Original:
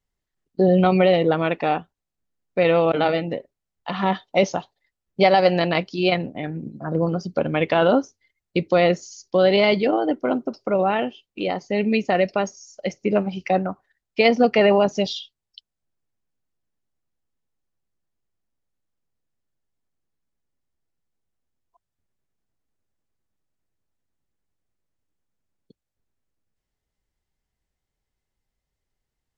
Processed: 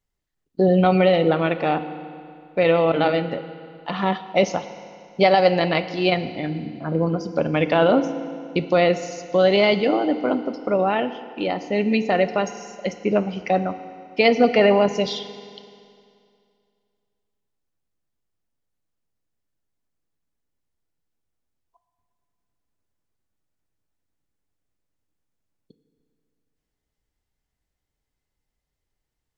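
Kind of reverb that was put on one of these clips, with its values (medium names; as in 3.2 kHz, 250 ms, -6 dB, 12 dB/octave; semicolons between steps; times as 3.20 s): FDN reverb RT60 2.4 s, low-frequency decay 1×, high-frequency decay 0.9×, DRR 10.5 dB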